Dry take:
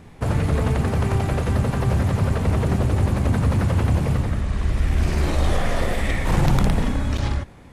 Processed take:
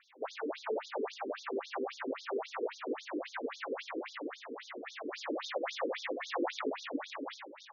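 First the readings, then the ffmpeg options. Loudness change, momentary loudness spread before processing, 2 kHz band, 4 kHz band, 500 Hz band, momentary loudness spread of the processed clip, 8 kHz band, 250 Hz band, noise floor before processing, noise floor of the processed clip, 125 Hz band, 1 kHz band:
-17.0 dB, 4 LU, -11.0 dB, -9.0 dB, -8.5 dB, 7 LU, -17.0 dB, -17.0 dB, -44 dBFS, -54 dBFS, under -40 dB, -11.5 dB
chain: -af "aecho=1:1:455|910|1365|1820:0.266|0.117|0.0515|0.0227,flanger=delay=18.5:depth=2.1:speed=1.5,afftfilt=real='re*between(b*sr/1024,340*pow(4900/340,0.5+0.5*sin(2*PI*3.7*pts/sr))/1.41,340*pow(4900/340,0.5+0.5*sin(2*PI*3.7*pts/sr))*1.41)':imag='im*between(b*sr/1024,340*pow(4900/340,0.5+0.5*sin(2*PI*3.7*pts/sr))/1.41,340*pow(4900/340,0.5+0.5*sin(2*PI*3.7*pts/sr))*1.41)':win_size=1024:overlap=0.75"

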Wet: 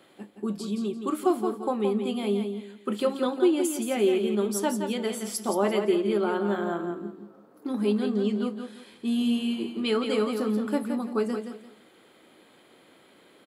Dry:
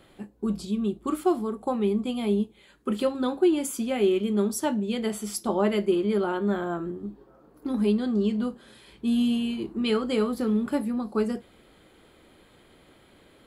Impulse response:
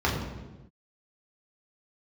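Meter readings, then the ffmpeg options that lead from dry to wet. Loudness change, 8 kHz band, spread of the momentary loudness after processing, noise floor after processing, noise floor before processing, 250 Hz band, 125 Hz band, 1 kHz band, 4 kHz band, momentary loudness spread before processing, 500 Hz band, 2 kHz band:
-0.5 dB, +1.0 dB, 11 LU, -57 dBFS, -57 dBFS, -1.5 dB, -3.0 dB, +1.0 dB, +1.0 dB, 9 LU, +0.5 dB, +1.0 dB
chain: -filter_complex "[0:a]highpass=220,asplit=2[s0][s1];[s1]aecho=0:1:171|342|513:0.447|0.116|0.0302[s2];[s0][s2]amix=inputs=2:normalize=0"

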